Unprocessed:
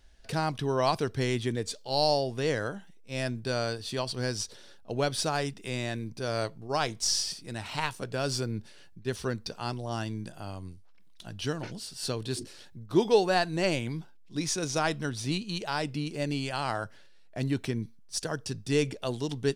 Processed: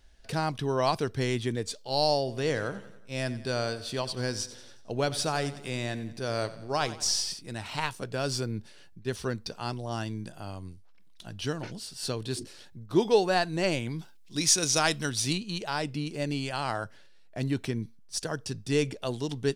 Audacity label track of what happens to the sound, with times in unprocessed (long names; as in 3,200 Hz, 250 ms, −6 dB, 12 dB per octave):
2.180000	7.390000	repeating echo 91 ms, feedback 52%, level −15.5 dB
13.990000	15.330000	high-shelf EQ 2,400 Hz +11 dB